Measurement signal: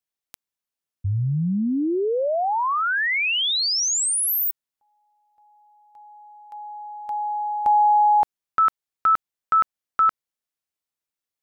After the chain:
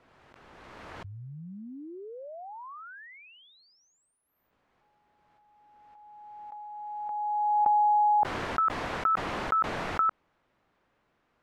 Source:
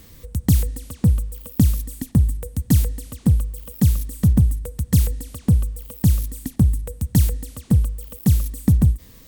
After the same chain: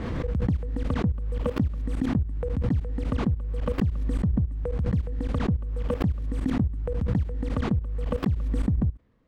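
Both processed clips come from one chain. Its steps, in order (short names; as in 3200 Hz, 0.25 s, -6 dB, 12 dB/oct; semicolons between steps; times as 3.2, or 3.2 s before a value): low shelf 77 Hz -8.5 dB; added noise white -57 dBFS; level quantiser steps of 20 dB; LPF 1400 Hz 12 dB/oct; backwards sustainer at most 21 dB/s; gain -2 dB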